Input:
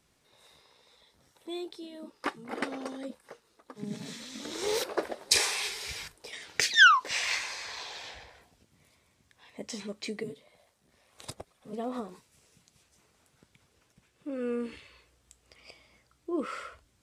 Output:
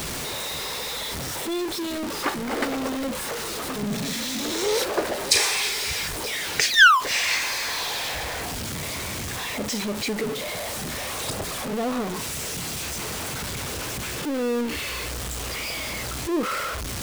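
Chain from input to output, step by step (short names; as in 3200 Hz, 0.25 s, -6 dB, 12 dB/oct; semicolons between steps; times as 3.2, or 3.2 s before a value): zero-crossing step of -28.5 dBFS; gain +3.5 dB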